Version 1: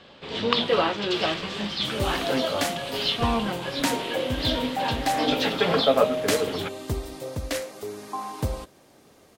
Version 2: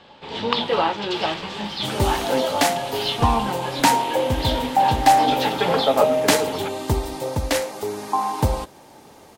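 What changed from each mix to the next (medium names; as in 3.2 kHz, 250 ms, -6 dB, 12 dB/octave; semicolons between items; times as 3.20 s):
second sound +7.0 dB; master: add peaking EQ 870 Hz +13 dB 0.22 oct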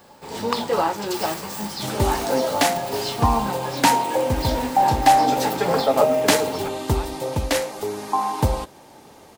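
speech: entry +1.35 s; first sound: remove resonant low-pass 3.3 kHz, resonance Q 3.3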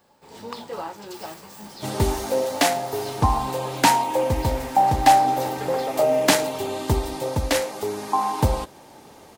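speech: muted; first sound -11.5 dB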